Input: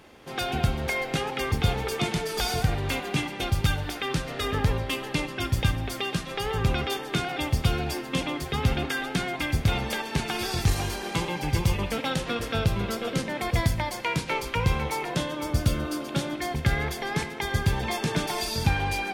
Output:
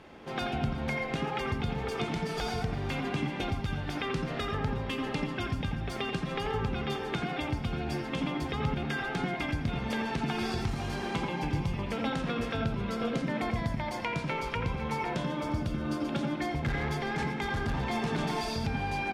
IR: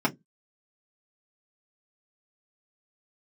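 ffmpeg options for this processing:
-filter_complex "[0:a]asettb=1/sr,asplit=3[link_01][link_02][link_03];[link_01]atrim=end=16.604[link_04];[link_02]atrim=start=16.6:end=18.5,asetpts=PTS-STARTPTS,afade=type=in:duration=0.004:curve=qsin,afade=type=out:start_time=1.896:duration=0.004:curve=qsin,asoftclip=type=hard:threshold=-26dB[link_05];[link_03]atrim=start=18.496[link_06];[link_04][link_05]acrossfade=duration=0.004:curve1=hsin:curve2=qsin[link_07];[link_07][link_06]acrossfade=duration=0.004:curve1=qsin:curve2=hsin,acompressor=threshold=-30dB:ratio=5,aemphasis=mode=reproduction:type=50fm,aecho=1:1:358:0.133,asplit=2[link_08][link_09];[1:a]atrim=start_sample=2205,adelay=82[link_10];[link_09][link_10]afir=irnorm=-1:irlink=0,volume=-17.5dB[link_11];[link_08][link_11]amix=inputs=2:normalize=0"

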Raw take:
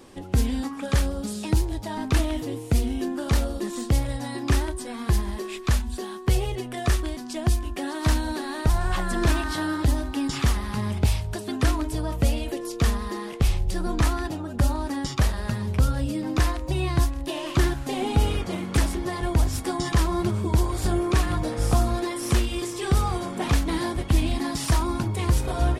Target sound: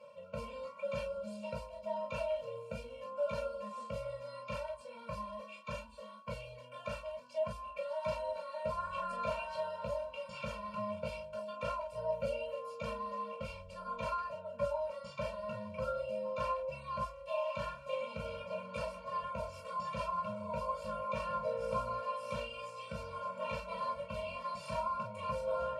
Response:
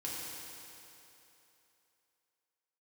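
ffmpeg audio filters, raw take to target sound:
-filter_complex "[0:a]asplit=3[link_01][link_02][link_03];[link_01]bandpass=frequency=730:width_type=q:width=8,volume=0dB[link_04];[link_02]bandpass=frequency=1090:width_type=q:width=8,volume=-6dB[link_05];[link_03]bandpass=frequency=2440:width_type=q:width=8,volume=-9dB[link_06];[link_04][link_05][link_06]amix=inputs=3:normalize=0,bandreject=frequency=3700:width=27,areverse,acompressor=mode=upward:threshold=-46dB:ratio=2.5,areverse[link_07];[1:a]atrim=start_sample=2205,atrim=end_sample=4410,asetrate=79380,aresample=44100[link_08];[link_07][link_08]afir=irnorm=-1:irlink=0,afftfilt=real='re*eq(mod(floor(b*sr/1024/220),2),0)':imag='im*eq(mod(floor(b*sr/1024/220),2),0)':win_size=1024:overlap=0.75,volume=13dB"

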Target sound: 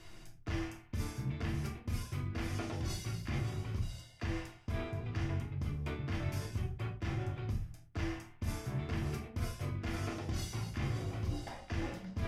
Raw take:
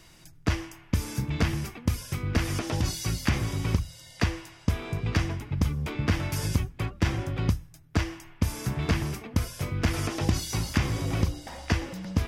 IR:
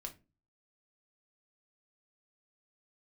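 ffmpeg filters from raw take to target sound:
-filter_complex "[0:a]highshelf=frequency=5200:gain=-8,areverse,acompressor=threshold=-35dB:ratio=6,areverse[link_01];[1:a]atrim=start_sample=2205,afade=type=out:start_time=0.13:duration=0.01,atrim=end_sample=6174,asetrate=27783,aresample=44100[link_02];[link_01][link_02]afir=irnorm=-1:irlink=0,volume=1dB"

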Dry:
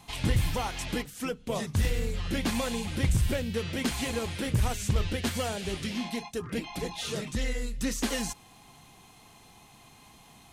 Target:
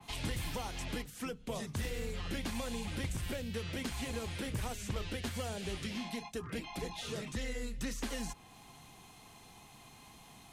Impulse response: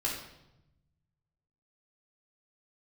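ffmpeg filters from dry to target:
-filter_complex "[0:a]acrossover=split=86|180|590|3600[link_01][link_02][link_03][link_04][link_05];[link_01]acompressor=threshold=-39dB:ratio=4[link_06];[link_02]acompressor=threshold=-48dB:ratio=4[link_07];[link_03]acompressor=threshold=-41dB:ratio=4[link_08];[link_04]acompressor=threshold=-43dB:ratio=4[link_09];[link_05]acompressor=threshold=-41dB:ratio=4[link_10];[link_06][link_07][link_08][link_09][link_10]amix=inputs=5:normalize=0,adynamicequalizer=threshold=0.00158:dfrequency=3200:dqfactor=0.7:tfrequency=3200:tqfactor=0.7:attack=5:release=100:ratio=0.375:range=2:mode=cutabove:tftype=highshelf,volume=-1.5dB"

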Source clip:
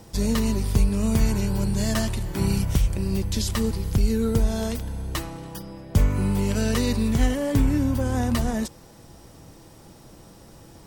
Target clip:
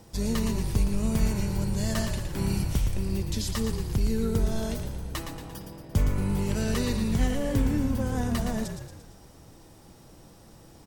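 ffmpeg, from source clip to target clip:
ffmpeg -i in.wav -filter_complex "[0:a]asplit=7[link_01][link_02][link_03][link_04][link_05][link_06][link_07];[link_02]adelay=115,afreqshift=-44,volume=-7dB[link_08];[link_03]adelay=230,afreqshift=-88,volume=-12.5dB[link_09];[link_04]adelay=345,afreqshift=-132,volume=-18dB[link_10];[link_05]adelay=460,afreqshift=-176,volume=-23.5dB[link_11];[link_06]adelay=575,afreqshift=-220,volume=-29.1dB[link_12];[link_07]adelay=690,afreqshift=-264,volume=-34.6dB[link_13];[link_01][link_08][link_09][link_10][link_11][link_12][link_13]amix=inputs=7:normalize=0,volume=-5dB" out.wav

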